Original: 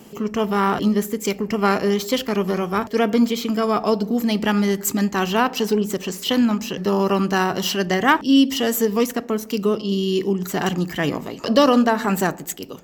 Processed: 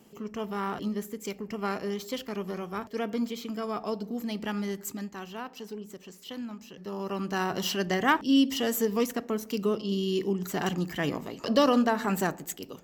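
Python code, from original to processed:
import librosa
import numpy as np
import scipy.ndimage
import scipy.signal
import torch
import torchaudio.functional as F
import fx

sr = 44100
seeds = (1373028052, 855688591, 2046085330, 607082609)

y = fx.gain(x, sr, db=fx.line((4.77, -13.0), (5.26, -20.0), (6.71, -20.0), (7.56, -7.5)))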